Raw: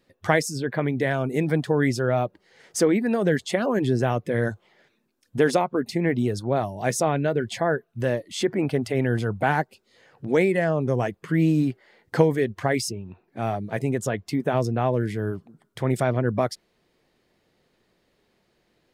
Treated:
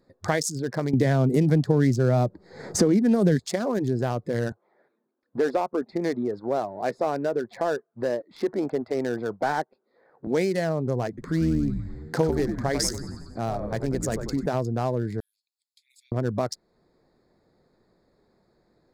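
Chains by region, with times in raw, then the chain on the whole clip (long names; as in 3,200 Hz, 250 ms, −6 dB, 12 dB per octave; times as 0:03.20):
0:00.93–0:03.40: low-shelf EQ 350 Hz +11.5 dB + multiband upward and downward compressor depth 70%
0:04.52–0:10.27: high-pass filter 320 Hz + leveller curve on the samples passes 1 + high-frequency loss of the air 410 metres
0:11.08–0:14.46: mains-hum notches 50/100/150/200/250 Hz + echo with shifted repeats 94 ms, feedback 57%, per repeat −90 Hz, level −6.5 dB
0:15.20–0:16.12: Butterworth high-pass 2,500 Hz 72 dB per octave + downward compressor 1.5 to 1, threshold −60 dBFS
whole clip: adaptive Wiener filter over 15 samples; high shelf with overshoot 3,700 Hz +8 dB, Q 1.5; downward compressor 1.5 to 1, threshold −36 dBFS; level +3.5 dB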